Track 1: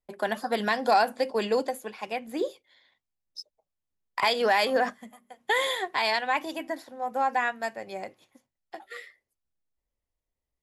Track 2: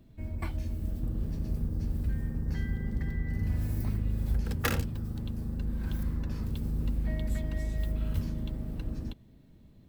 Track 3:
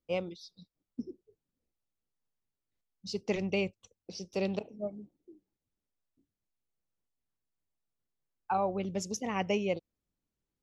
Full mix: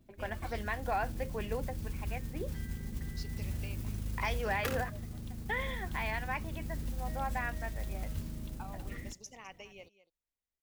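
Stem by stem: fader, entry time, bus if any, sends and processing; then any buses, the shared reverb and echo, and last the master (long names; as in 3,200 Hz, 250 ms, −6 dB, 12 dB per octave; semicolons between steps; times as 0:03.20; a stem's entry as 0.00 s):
−5.0 dB, 0.00 s, no send, no echo send, transistor ladder low-pass 3,000 Hz, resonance 35%
−7.5 dB, 0.00 s, no send, no echo send, noise that follows the level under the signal 18 dB
−7.0 dB, 0.10 s, no send, echo send −15.5 dB, downward compressor, threshold −32 dBFS, peak gain reduction 7 dB; high-pass filter 1,400 Hz 6 dB per octave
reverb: not used
echo: single-tap delay 206 ms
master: no processing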